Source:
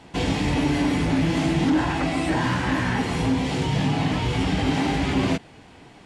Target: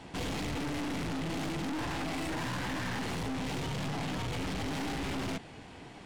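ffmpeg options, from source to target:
-af "aeval=exprs='(tanh(50.1*val(0)+0.35)-tanh(0.35))/50.1':c=same"

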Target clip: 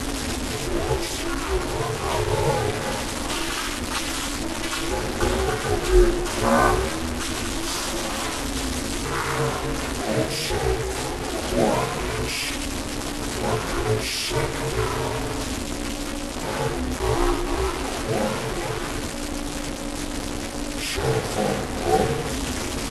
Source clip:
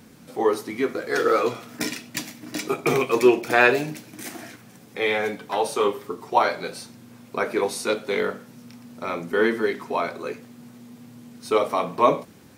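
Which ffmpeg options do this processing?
-af "aeval=exprs='val(0)+0.5*0.126*sgn(val(0))':c=same,highpass=48,aecho=1:1:5.7:0.71,acrusher=bits=3:mix=0:aa=0.000001,asetrate=24211,aresample=44100,flanger=delay=6.9:depth=9.8:regen=-36:speed=0.72:shape=sinusoidal,aeval=exprs='val(0)*sin(2*PI*160*n/s)':c=same"

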